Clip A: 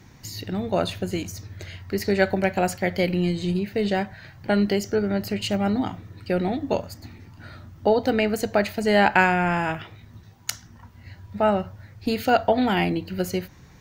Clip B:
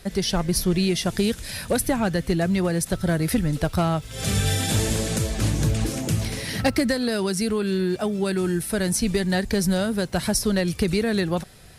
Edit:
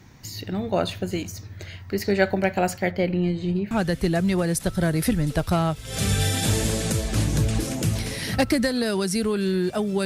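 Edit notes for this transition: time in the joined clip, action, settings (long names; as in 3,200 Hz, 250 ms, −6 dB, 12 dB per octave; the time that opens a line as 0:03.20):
clip A
0:02.91–0:03.71: parametric band 13,000 Hz −13 dB 2.5 octaves
0:03.71: continue with clip B from 0:01.97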